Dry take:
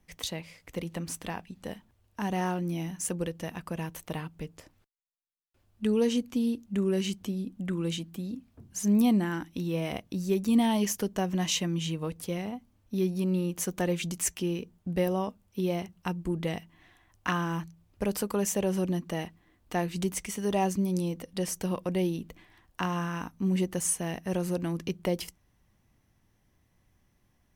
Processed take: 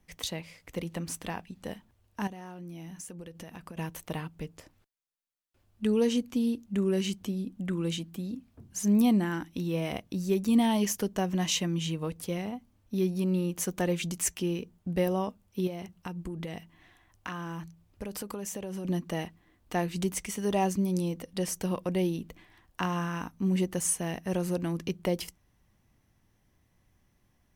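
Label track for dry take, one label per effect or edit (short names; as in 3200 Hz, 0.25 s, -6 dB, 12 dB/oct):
2.270000	3.770000	compressor 12:1, threshold -39 dBFS
15.670000	18.850000	compressor, threshold -33 dBFS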